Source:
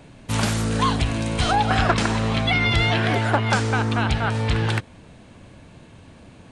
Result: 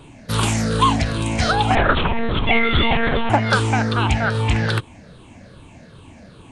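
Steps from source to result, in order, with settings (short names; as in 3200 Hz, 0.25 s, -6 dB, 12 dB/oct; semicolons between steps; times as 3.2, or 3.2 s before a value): moving spectral ripple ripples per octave 0.64, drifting -2.5 Hz, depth 11 dB; 1.75–3.3 monotone LPC vocoder at 8 kHz 230 Hz; gain +1.5 dB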